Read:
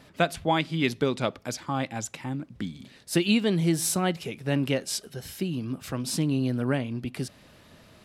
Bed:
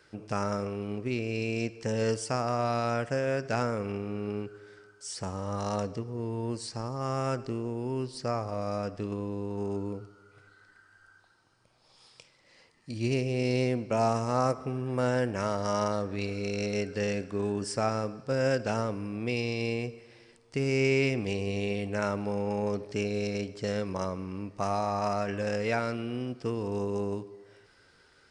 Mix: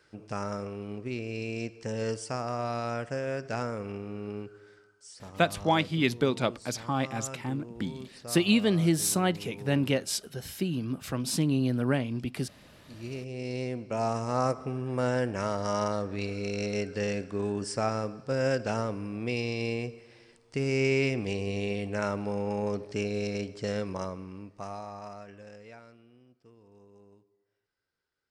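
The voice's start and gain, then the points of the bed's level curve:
5.20 s, −0.5 dB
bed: 0:04.68 −3.5 dB
0:05.14 −11 dB
0:12.95 −11 dB
0:14.43 −0.5 dB
0:23.84 −0.5 dB
0:26.22 −25.5 dB

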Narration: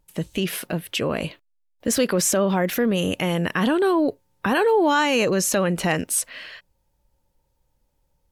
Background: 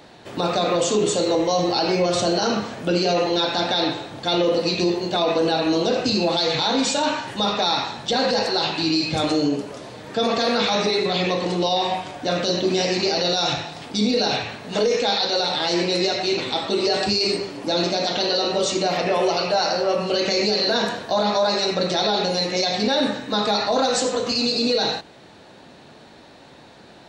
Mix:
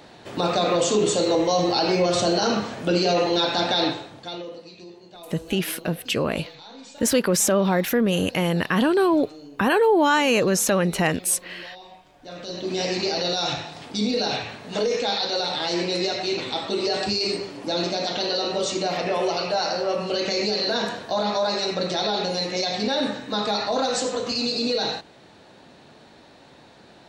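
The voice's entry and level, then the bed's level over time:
5.15 s, +0.5 dB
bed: 0:03.87 −0.5 dB
0:04.68 −22.5 dB
0:12.05 −22.5 dB
0:12.84 −3.5 dB

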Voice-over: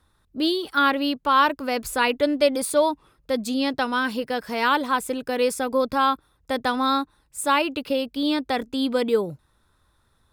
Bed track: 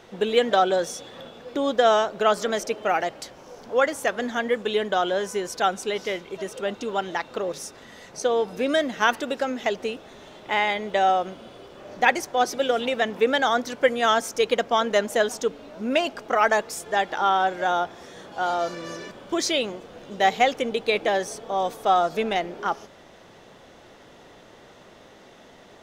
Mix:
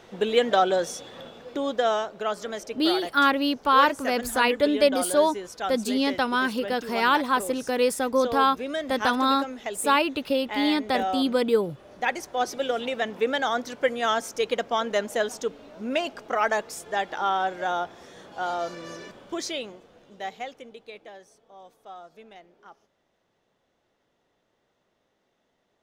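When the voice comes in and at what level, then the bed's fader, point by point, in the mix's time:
2.40 s, −0.5 dB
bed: 0:01.29 −1 dB
0:02.24 −8 dB
0:11.96 −8 dB
0:12.44 −4 dB
0:19.09 −4 dB
0:21.28 −23.5 dB

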